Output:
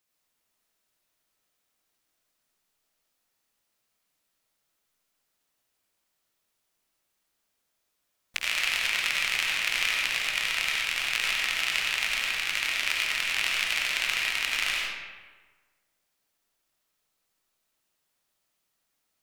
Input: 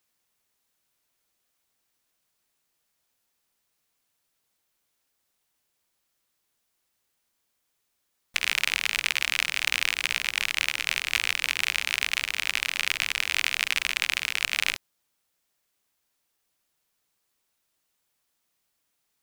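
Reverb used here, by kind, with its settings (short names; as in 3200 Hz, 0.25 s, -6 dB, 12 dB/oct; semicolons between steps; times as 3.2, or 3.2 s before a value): digital reverb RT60 1.4 s, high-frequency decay 0.65×, pre-delay 50 ms, DRR -3 dB; gain -4.5 dB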